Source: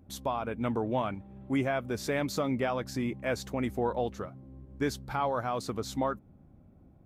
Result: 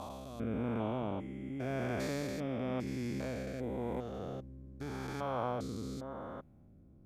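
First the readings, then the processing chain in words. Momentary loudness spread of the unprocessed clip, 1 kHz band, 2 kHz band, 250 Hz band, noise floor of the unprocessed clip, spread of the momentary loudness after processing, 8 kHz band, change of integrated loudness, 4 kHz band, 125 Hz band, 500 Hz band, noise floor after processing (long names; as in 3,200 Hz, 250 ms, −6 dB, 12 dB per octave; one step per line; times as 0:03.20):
6 LU, −8.5 dB, −8.5 dB, −4.5 dB, −58 dBFS, 9 LU, −9.5 dB, −6.5 dB, −8.5 dB, −3.0 dB, −6.5 dB, −60 dBFS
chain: spectrum averaged block by block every 400 ms
rotating-speaker cabinet horn 0.9 Hz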